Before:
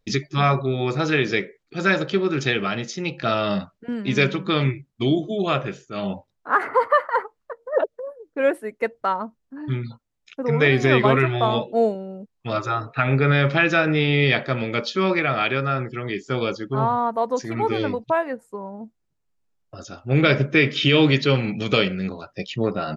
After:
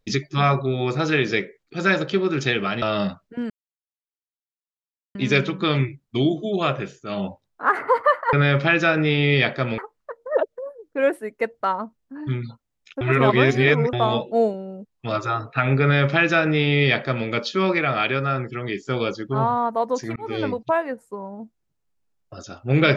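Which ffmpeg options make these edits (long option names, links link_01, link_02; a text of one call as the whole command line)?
ffmpeg -i in.wav -filter_complex "[0:a]asplit=8[link_01][link_02][link_03][link_04][link_05][link_06][link_07][link_08];[link_01]atrim=end=2.822[link_09];[link_02]atrim=start=3.328:end=4.01,asetpts=PTS-STARTPTS,afade=type=out:start_time=0.678:duration=0.004:curve=hsin,apad=pad_dur=1.65[link_10];[link_03]atrim=start=4.01:end=7.192,asetpts=PTS-STARTPTS,afade=type=in:duration=0.004:curve=hsin[link_11];[link_04]atrim=start=13.228:end=14.682[link_12];[link_05]atrim=start=7.188:end=10.422[link_13];[link_06]atrim=start=10.418:end=11.342,asetpts=PTS-STARTPTS,areverse[link_14];[link_07]atrim=start=11.338:end=17.57,asetpts=PTS-STARTPTS,afade=type=out:start_time=6.228:duration=0.004:curve=hsin[link_15];[link_08]atrim=start=17.57,asetpts=PTS-STARTPTS,afade=type=in:duration=0.28[link_16];[link_10][link_11]concat=n=2:v=0:a=1[link_17];[link_09][link_17]acrossfade=duration=0.004:curve1=hsin:curve2=hsin[link_18];[link_18][link_12]acrossfade=duration=0.004:curve1=hsin:curve2=hsin[link_19];[link_19][link_13]acrossfade=duration=0.004:curve1=hsin:curve2=hsin[link_20];[link_20][link_14]acrossfade=duration=0.004:curve1=hsin:curve2=hsin[link_21];[link_15][link_16]concat=n=2:v=0:a=1[link_22];[link_21][link_22]acrossfade=duration=0.004:curve1=hsin:curve2=hsin" out.wav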